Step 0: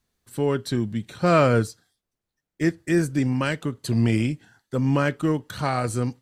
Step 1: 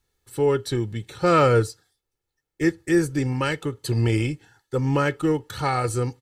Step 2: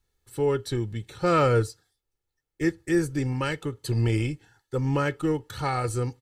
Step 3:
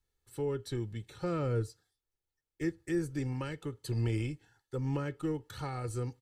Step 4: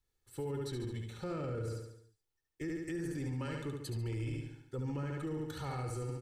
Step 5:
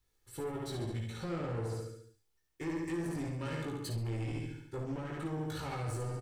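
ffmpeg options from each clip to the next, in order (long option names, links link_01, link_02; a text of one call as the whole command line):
ffmpeg -i in.wav -af "aecho=1:1:2.3:0.64" out.wav
ffmpeg -i in.wav -af "lowshelf=frequency=70:gain=7,volume=-4dB" out.wav
ffmpeg -i in.wav -filter_complex "[0:a]acrossover=split=420[link_01][link_02];[link_02]acompressor=threshold=-33dB:ratio=4[link_03];[link_01][link_03]amix=inputs=2:normalize=0,volume=-7.5dB" out.wav
ffmpeg -i in.wav -filter_complex "[0:a]asplit=2[link_01][link_02];[link_02]aecho=0:1:71|142|213|284|355|426|497:0.631|0.334|0.177|0.0939|0.0498|0.0264|0.014[link_03];[link_01][link_03]amix=inputs=2:normalize=0,alimiter=level_in=6dB:limit=-24dB:level=0:latency=1:release=11,volume=-6dB,volume=-1.5dB" out.wav
ffmpeg -i in.wav -filter_complex "[0:a]asoftclip=type=tanh:threshold=-40dB,asplit=2[link_01][link_02];[link_02]aecho=0:1:18|58:0.668|0.447[link_03];[link_01][link_03]amix=inputs=2:normalize=0,volume=4dB" out.wav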